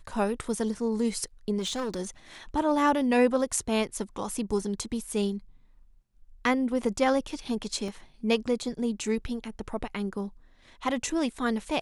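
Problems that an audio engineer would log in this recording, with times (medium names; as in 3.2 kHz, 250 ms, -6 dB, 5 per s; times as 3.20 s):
1.58–2.00 s: clipped -26.5 dBFS
7.88 s: dropout 3.4 ms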